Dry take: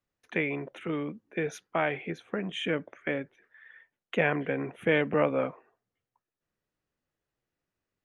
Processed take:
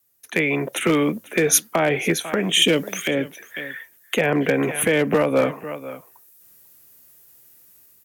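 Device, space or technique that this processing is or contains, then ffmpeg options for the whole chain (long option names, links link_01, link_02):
FM broadcast chain: -filter_complex "[0:a]asettb=1/sr,asplit=3[link_01][link_02][link_03];[link_01]atrim=end=2.624[link_04];[link_02]atrim=start=2.62:end=3.11,asetpts=PTS-STARTPTS,afade=type=in:duration=0.004:curve=qsin,afade=type=out:start_time=0.486:duration=0.004:curve=qsin,highshelf=frequency=2400:width_type=q:width=1.5:gain=10.5[link_05];[link_03]atrim=start=3.106[link_06];[link_04][link_05]acrossfade=duration=0.004:curve1=hsin:curve2=qsin[link_07];[link_07][link_06]acrossfade=duration=0.004:curve1=qsin:curve2=hsin,highpass=60,aecho=1:1:495:0.0841,dynaudnorm=framelen=100:gausssize=13:maxgain=14dB,acrossover=split=250|630[link_08][link_09][link_10];[link_08]acompressor=threshold=-30dB:ratio=4[link_11];[link_09]acompressor=threshold=-19dB:ratio=4[link_12];[link_10]acompressor=threshold=-26dB:ratio=4[link_13];[link_11][link_12][link_13]amix=inputs=3:normalize=0,aemphasis=mode=production:type=50fm,alimiter=limit=-13.5dB:level=0:latency=1:release=256,asoftclip=type=hard:threshold=-16dB,lowpass=frequency=15000:width=0.5412,lowpass=frequency=15000:width=1.3066,aemphasis=mode=production:type=50fm,volume=5.5dB"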